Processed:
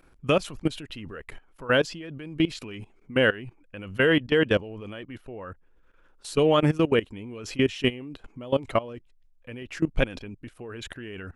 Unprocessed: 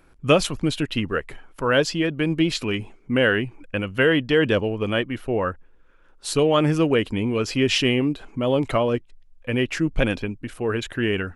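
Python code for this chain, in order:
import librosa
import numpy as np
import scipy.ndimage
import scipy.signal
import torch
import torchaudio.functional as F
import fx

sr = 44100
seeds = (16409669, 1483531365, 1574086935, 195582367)

y = fx.notch(x, sr, hz=4800.0, q=11.0, at=(6.37, 8.11))
y = fx.level_steps(y, sr, step_db=19)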